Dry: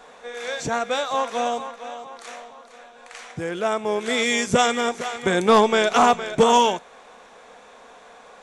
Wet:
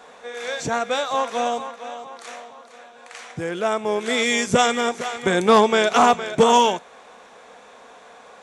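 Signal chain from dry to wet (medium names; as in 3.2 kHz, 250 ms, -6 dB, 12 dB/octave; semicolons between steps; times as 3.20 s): high-pass 57 Hz; trim +1 dB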